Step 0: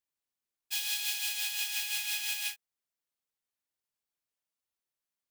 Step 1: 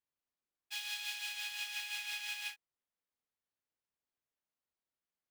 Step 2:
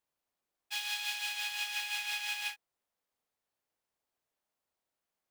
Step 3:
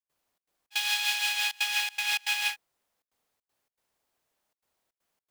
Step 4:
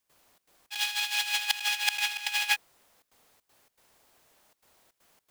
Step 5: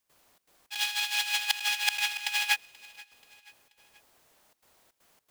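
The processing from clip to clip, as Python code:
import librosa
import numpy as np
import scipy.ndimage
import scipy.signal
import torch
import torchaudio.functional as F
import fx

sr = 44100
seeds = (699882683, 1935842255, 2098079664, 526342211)

y1 = fx.lowpass(x, sr, hz=1900.0, slope=6)
y2 = fx.peak_eq(y1, sr, hz=690.0, db=6.0, octaves=1.5)
y2 = y2 * librosa.db_to_amplitude(4.0)
y3 = fx.step_gate(y2, sr, bpm=159, pattern='.xxx.xx.xxxxxxxx', floor_db=-24.0, edge_ms=4.5)
y3 = y3 * librosa.db_to_amplitude(8.5)
y4 = fx.over_compress(y3, sr, threshold_db=-35.0, ratio=-0.5)
y4 = y4 * librosa.db_to_amplitude(7.5)
y5 = fx.echo_feedback(y4, sr, ms=482, feedback_pct=50, wet_db=-23)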